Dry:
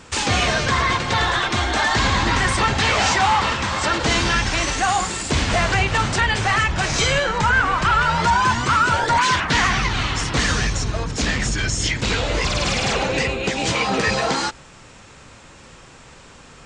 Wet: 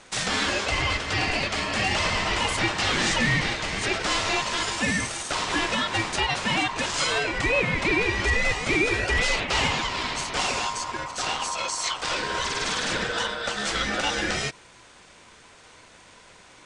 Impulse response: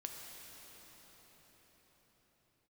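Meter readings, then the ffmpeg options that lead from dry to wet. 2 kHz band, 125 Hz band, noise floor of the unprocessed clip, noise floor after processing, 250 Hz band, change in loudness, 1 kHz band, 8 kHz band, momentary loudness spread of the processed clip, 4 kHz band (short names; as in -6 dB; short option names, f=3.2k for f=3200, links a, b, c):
-4.5 dB, -10.0 dB, -45 dBFS, -51 dBFS, -5.5 dB, -5.5 dB, -9.0 dB, -5.0 dB, 5 LU, -3.5 dB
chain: -af "equalizer=f=110:w=0.91:g=-14,aeval=exprs='val(0)*sin(2*PI*1000*n/s)':c=same,volume=-2dB"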